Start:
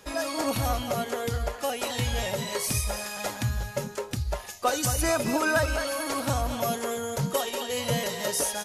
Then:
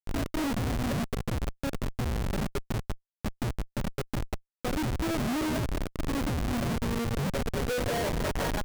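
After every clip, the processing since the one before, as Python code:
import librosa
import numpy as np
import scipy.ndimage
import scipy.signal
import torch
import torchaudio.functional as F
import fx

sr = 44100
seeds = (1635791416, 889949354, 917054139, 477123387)

y = fx.filter_sweep_bandpass(x, sr, from_hz=220.0, to_hz=2100.0, start_s=7.34, end_s=8.56, q=1.5)
y = fx.schmitt(y, sr, flips_db=-35.0)
y = F.gain(torch.from_numpy(y), 8.0).numpy()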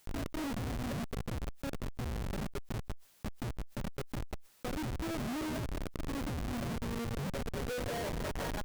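y = fx.env_flatten(x, sr, amount_pct=70)
y = F.gain(torch.from_numpy(y), -8.5).numpy()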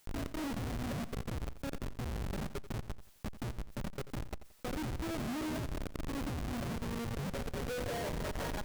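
y = fx.echo_feedback(x, sr, ms=87, feedback_pct=31, wet_db=-14.0)
y = F.gain(torch.from_numpy(y), -1.0).numpy()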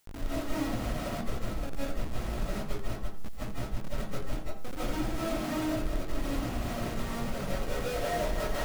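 y = fx.rev_freeverb(x, sr, rt60_s=0.4, hf_ratio=0.45, predelay_ms=115, drr_db=-8.5)
y = F.gain(torch.from_numpy(y), -3.5).numpy()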